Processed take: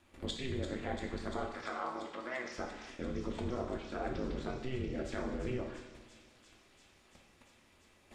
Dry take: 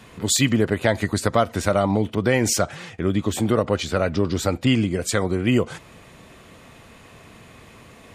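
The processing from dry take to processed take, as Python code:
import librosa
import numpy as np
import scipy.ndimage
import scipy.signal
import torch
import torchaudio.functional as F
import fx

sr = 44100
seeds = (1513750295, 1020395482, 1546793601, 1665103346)

y = fx.env_lowpass_down(x, sr, base_hz=2400.0, full_db=-19.0)
y = fx.level_steps(y, sr, step_db=15)
y = y * np.sin(2.0 * np.pi * 130.0 * np.arange(len(y)) / sr)
y = fx.cabinet(y, sr, low_hz=390.0, low_slope=12, high_hz=6300.0, hz=(420.0, 1200.0, 2000.0, 5200.0), db=(-6, 9, 6, 8), at=(1.5, 2.52))
y = fx.echo_wet_highpass(y, sr, ms=343, feedback_pct=83, hz=4400.0, wet_db=-6.5)
y = fx.rev_double_slope(y, sr, seeds[0], early_s=0.83, late_s=2.6, knee_db=-18, drr_db=0.5)
y = y * 10.0 ** (-6.0 / 20.0)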